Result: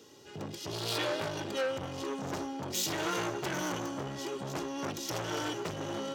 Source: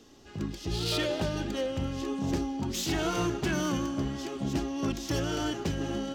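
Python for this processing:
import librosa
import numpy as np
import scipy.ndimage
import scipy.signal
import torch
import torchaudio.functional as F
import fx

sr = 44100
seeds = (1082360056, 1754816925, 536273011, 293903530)

y = scipy.signal.sosfilt(scipy.signal.butter(4, 110.0, 'highpass', fs=sr, output='sos'), x)
y = fx.high_shelf(y, sr, hz=9900.0, db=6.5)
y = y + 0.5 * np.pad(y, (int(2.1 * sr / 1000.0), 0))[:len(y)]
y = fx.transformer_sat(y, sr, knee_hz=2100.0)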